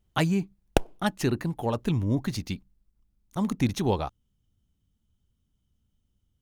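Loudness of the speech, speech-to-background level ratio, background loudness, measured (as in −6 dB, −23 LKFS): −29.0 LKFS, 1.0 dB, −30.0 LKFS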